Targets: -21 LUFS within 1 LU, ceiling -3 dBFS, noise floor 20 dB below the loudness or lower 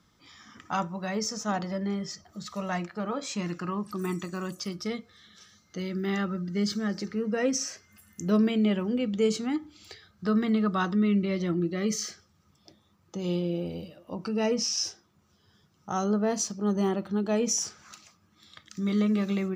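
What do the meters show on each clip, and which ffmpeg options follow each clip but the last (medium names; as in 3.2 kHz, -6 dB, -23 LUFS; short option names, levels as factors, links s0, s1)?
loudness -29.0 LUFS; peak level -14.5 dBFS; loudness target -21.0 LUFS
-> -af "volume=2.51"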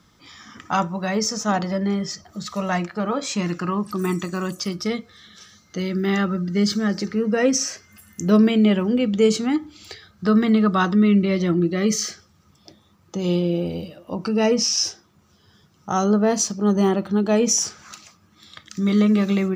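loudness -21.0 LUFS; peak level -6.5 dBFS; noise floor -58 dBFS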